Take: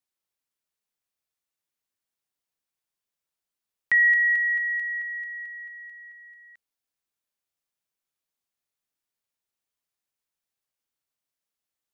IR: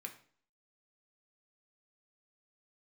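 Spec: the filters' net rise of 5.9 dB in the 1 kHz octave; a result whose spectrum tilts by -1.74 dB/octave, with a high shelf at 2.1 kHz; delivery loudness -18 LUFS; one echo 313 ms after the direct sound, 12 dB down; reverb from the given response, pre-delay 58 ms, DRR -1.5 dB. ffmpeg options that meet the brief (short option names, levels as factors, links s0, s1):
-filter_complex "[0:a]equalizer=f=1000:t=o:g=5.5,highshelf=f=2100:g=7.5,aecho=1:1:313:0.251,asplit=2[s0][s1];[1:a]atrim=start_sample=2205,adelay=58[s2];[s1][s2]afir=irnorm=-1:irlink=0,volume=1.68[s3];[s0][s3]amix=inputs=2:normalize=0,volume=0.668"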